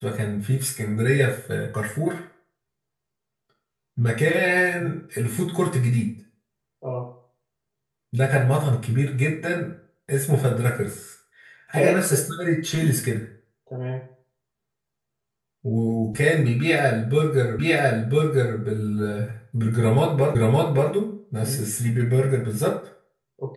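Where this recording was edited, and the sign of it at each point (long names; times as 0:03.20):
0:17.59: the same again, the last 1 s
0:20.35: the same again, the last 0.57 s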